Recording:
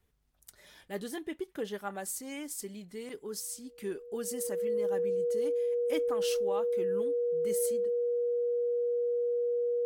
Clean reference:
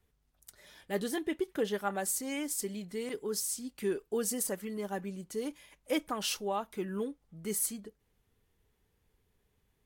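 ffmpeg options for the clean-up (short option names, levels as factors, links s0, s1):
-af "bandreject=f=480:w=30,asetnsamples=n=441:p=0,asendcmd='0.88 volume volume 4.5dB',volume=1"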